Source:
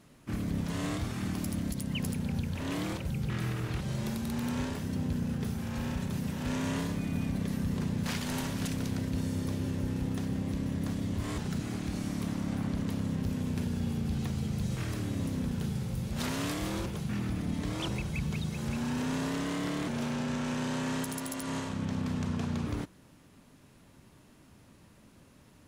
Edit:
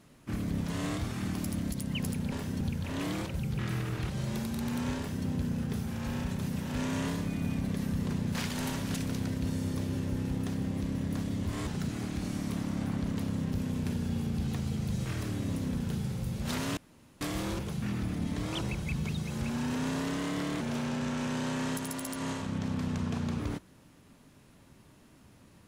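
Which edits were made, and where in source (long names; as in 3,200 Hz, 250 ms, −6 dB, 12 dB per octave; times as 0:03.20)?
0:04.68–0:04.97: duplicate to 0:02.32
0:16.48: splice in room tone 0.44 s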